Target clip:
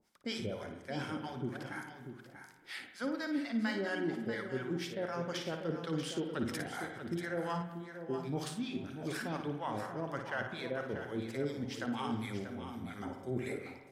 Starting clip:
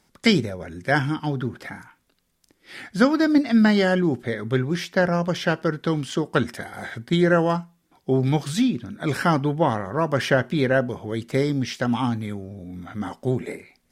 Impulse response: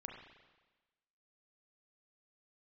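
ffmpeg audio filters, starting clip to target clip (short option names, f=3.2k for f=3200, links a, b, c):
-filter_complex "[0:a]lowshelf=f=210:g=-9,bandreject=f=60:t=h:w=6,bandreject=f=120:t=h:w=6,bandreject=f=180:t=h:w=6,areverse,acompressor=threshold=-32dB:ratio=4,areverse,acrossover=split=670[a][b];[a]aeval=exprs='val(0)*(1-1/2+1/2*cos(2*PI*4.2*n/s))':c=same[c];[b]aeval=exprs='val(0)*(1-1/2-1/2*cos(2*PI*4.2*n/s))':c=same[d];[c][d]amix=inputs=2:normalize=0,aecho=1:1:638:0.335,asplit=2[e][f];[1:a]atrim=start_sample=2205,adelay=56[g];[f][g]afir=irnorm=-1:irlink=0,volume=-2dB[h];[e][h]amix=inputs=2:normalize=0"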